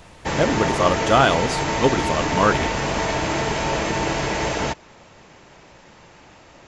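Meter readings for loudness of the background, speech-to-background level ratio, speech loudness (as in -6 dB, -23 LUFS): -23.0 LUFS, 2.0 dB, -21.0 LUFS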